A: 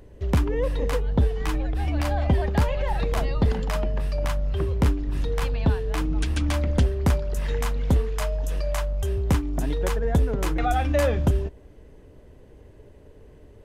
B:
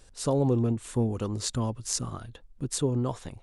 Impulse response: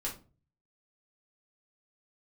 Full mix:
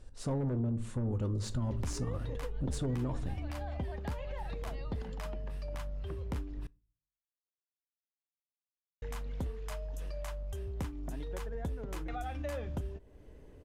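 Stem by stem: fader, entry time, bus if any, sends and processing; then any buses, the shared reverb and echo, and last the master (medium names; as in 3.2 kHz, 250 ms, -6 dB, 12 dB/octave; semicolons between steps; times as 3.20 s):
-6.0 dB, 1.50 s, muted 6.67–9.02 s, send -23.5 dB, compression 2:1, threshold -38 dBFS, peak gain reduction 12 dB; endings held to a fixed fall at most 400 dB/s
-6.5 dB, 0.00 s, send -9 dB, single-diode clipper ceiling -24 dBFS; tilt EQ -2.5 dB/octave; Chebyshev shaper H 2 -10 dB, 3 -19 dB, 5 -23 dB, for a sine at -9.5 dBFS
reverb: on, RT60 0.35 s, pre-delay 3 ms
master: peak limiter -26.5 dBFS, peak gain reduction 8 dB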